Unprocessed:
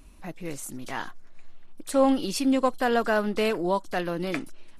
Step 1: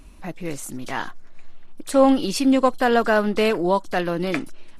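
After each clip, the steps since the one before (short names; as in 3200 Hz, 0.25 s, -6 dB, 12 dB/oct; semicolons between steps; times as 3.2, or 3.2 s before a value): high shelf 7900 Hz -4.5 dB; gain +5.5 dB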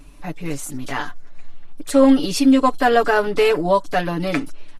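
comb 6.9 ms, depth 91%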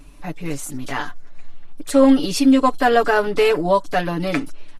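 nothing audible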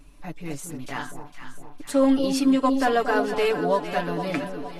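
echo with dull and thin repeats by turns 0.23 s, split 940 Hz, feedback 72%, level -7 dB; gain -6.5 dB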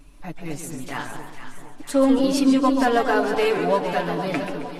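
warbling echo 0.138 s, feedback 49%, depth 199 cents, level -9 dB; gain +1.5 dB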